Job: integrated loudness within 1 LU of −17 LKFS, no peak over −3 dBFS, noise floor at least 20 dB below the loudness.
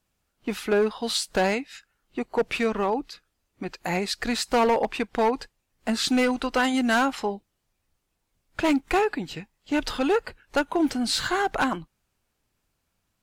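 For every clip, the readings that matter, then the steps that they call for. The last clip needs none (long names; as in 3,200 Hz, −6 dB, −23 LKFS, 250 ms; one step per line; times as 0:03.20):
share of clipped samples 1.6%; peaks flattened at −16.5 dBFS; integrated loudness −25.5 LKFS; sample peak −16.5 dBFS; target loudness −17.0 LKFS
→ clipped peaks rebuilt −16.5 dBFS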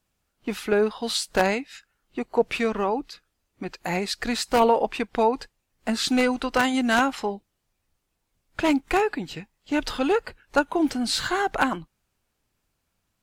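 share of clipped samples 0.0%; integrated loudness −24.5 LKFS; sample peak −7.5 dBFS; target loudness −17.0 LKFS
→ level +7.5 dB
brickwall limiter −3 dBFS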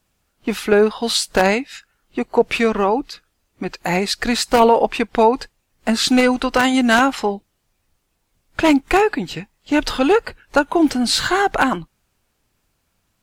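integrated loudness −17.5 LKFS; sample peak −3.0 dBFS; background noise floor −69 dBFS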